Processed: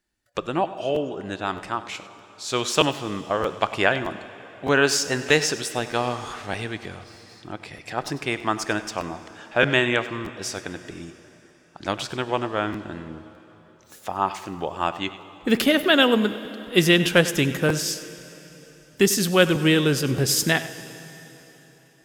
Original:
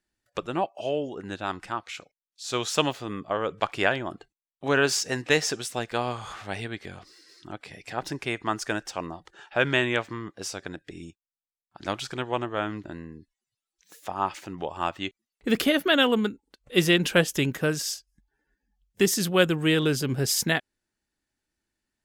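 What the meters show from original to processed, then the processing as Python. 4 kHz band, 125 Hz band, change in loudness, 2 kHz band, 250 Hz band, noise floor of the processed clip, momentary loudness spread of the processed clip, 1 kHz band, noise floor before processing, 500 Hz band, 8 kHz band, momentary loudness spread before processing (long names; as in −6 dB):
+4.0 dB, +4.0 dB, +3.5 dB, +4.0 dB, +4.0 dB, −53 dBFS, 19 LU, +4.0 dB, below −85 dBFS, +4.0 dB, +3.5 dB, 17 LU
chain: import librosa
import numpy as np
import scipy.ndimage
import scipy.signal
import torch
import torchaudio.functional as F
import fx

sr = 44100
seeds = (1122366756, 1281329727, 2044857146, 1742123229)

p1 = x + fx.echo_single(x, sr, ms=98, db=-16.5, dry=0)
p2 = fx.rev_plate(p1, sr, seeds[0], rt60_s=3.9, hf_ratio=0.9, predelay_ms=0, drr_db=13.5)
p3 = fx.buffer_crackle(p2, sr, first_s=0.94, period_s=0.62, block=512, kind='repeat')
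y = p3 * librosa.db_to_amplitude(3.5)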